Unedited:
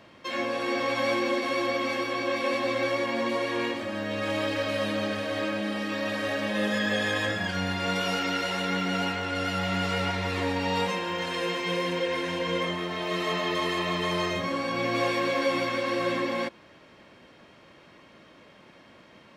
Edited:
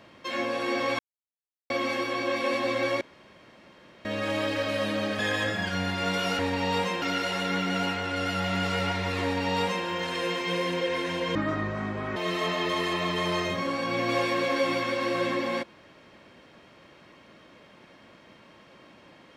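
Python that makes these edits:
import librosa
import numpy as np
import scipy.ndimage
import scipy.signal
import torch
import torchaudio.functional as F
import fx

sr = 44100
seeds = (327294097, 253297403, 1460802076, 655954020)

y = fx.edit(x, sr, fx.silence(start_s=0.99, length_s=0.71),
    fx.room_tone_fill(start_s=3.01, length_s=1.04),
    fx.cut(start_s=5.19, length_s=1.82),
    fx.duplicate(start_s=10.42, length_s=0.63, to_s=8.21),
    fx.speed_span(start_s=12.54, length_s=0.48, speed=0.59), tone=tone)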